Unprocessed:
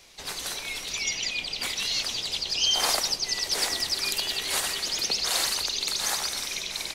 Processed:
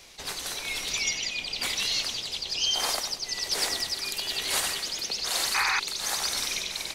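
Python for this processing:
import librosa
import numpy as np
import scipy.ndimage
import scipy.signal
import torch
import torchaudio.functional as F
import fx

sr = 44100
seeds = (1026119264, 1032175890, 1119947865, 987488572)

y = fx.rider(x, sr, range_db=3, speed_s=0.5)
y = y * (1.0 - 0.39 / 2.0 + 0.39 / 2.0 * np.cos(2.0 * np.pi * 1.1 * (np.arange(len(y)) / sr)))
y = fx.echo_feedback(y, sr, ms=93, feedback_pct=44, wet_db=-13.5)
y = fx.spec_paint(y, sr, seeds[0], shape='noise', start_s=5.54, length_s=0.26, low_hz=750.0, high_hz=2600.0, level_db=-26.0)
y = fx.attack_slew(y, sr, db_per_s=400.0)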